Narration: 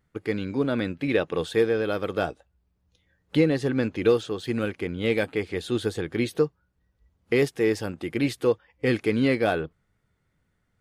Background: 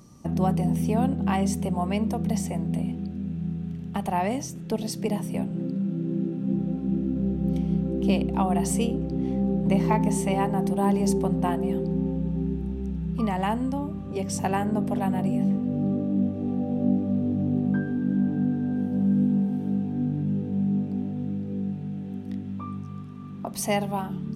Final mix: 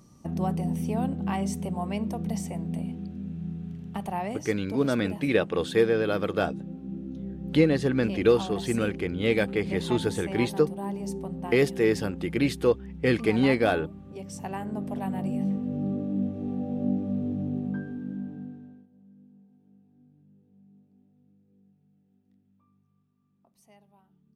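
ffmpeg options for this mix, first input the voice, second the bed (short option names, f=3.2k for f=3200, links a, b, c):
-filter_complex "[0:a]adelay=4200,volume=0dB[a];[1:a]volume=2dB,afade=t=out:st=3.98:d=0.79:silence=0.501187,afade=t=in:st=14.35:d=1.07:silence=0.473151,afade=t=out:st=17.23:d=1.64:silence=0.0354813[b];[a][b]amix=inputs=2:normalize=0"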